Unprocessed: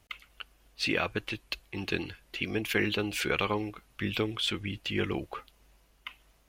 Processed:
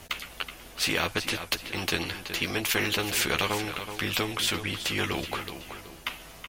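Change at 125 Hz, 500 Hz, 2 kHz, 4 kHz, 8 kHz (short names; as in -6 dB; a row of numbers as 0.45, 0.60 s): +1.5, +0.5, +4.0, +6.0, +12.5 dB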